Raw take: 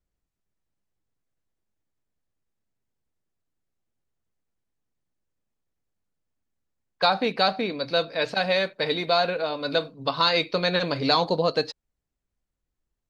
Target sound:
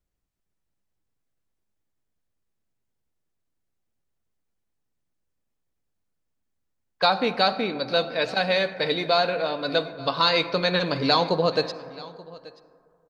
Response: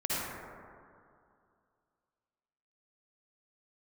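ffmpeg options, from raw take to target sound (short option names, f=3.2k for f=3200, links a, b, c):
-filter_complex "[0:a]aecho=1:1:881:0.0891,asplit=2[a][b];[1:a]atrim=start_sample=2205[c];[b][c]afir=irnorm=-1:irlink=0,volume=-20.5dB[d];[a][d]amix=inputs=2:normalize=0"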